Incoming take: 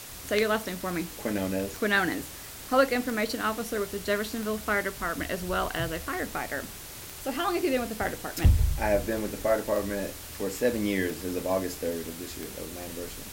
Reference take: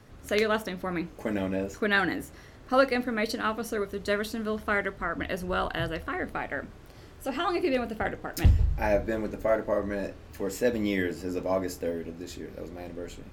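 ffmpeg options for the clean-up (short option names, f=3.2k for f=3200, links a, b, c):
-af "adeclick=t=4,afwtdn=0.0079"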